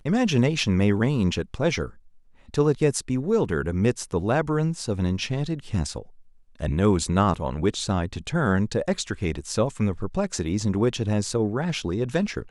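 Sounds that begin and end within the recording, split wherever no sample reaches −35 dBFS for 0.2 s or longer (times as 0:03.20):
0:02.54–0:06.02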